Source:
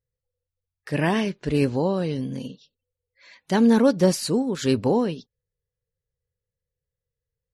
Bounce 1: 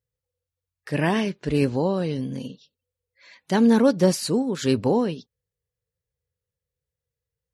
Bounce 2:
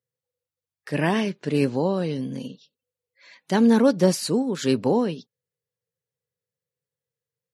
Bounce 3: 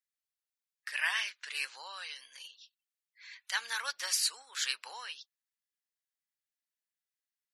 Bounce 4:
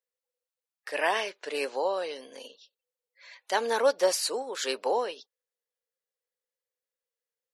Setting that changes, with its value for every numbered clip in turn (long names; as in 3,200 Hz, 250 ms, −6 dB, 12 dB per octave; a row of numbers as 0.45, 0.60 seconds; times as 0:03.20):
high-pass filter, corner frequency: 43, 130, 1,400, 520 Hertz